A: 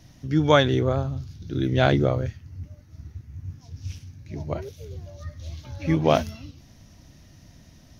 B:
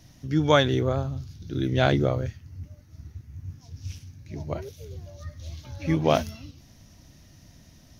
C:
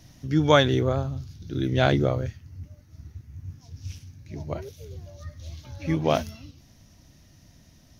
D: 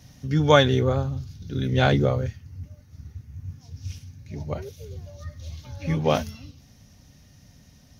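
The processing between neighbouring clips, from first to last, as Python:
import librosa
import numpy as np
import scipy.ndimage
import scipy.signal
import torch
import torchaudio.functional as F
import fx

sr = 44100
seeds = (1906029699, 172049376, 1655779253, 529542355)

y1 = fx.high_shelf(x, sr, hz=5600.0, db=5.0)
y1 = y1 * 10.0 ** (-2.0 / 20.0)
y2 = fx.rider(y1, sr, range_db=4, speed_s=2.0)
y3 = fx.notch_comb(y2, sr, f0_hz=330.0)
y3 = y3 * 10.0 ** (2.5 / 20.0)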